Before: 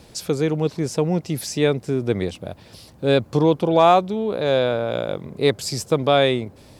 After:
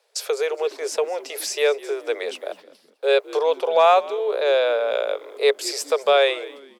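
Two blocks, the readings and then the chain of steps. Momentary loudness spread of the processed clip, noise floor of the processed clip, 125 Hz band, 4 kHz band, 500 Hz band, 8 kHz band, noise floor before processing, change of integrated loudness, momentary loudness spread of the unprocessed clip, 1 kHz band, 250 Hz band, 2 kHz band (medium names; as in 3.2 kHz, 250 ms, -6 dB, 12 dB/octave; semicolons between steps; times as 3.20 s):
10 LU, -57 dBFS, under -40 dB, +0.5 dB, +0.5 dB, +1.5 dB, -48 dBFS, -1.0 dB, 10 LU, -1.0 dB, -18.5 dB, +2.5 dB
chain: gate -39 dBFS, range -19 dB; rippled Chebyshev high-pass 410 Hz, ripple 3 dB; in parallel at -1 dB: compression, threshold -30 dBFS, peak gain reduction 16.5 dB; on the sum: frequency-shifting echo 207 ms, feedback 32%, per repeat -71 Hz, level -19 dB; dynamic bell 2.6 kHz, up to +4 dB, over -44 dBFS, Q 5.8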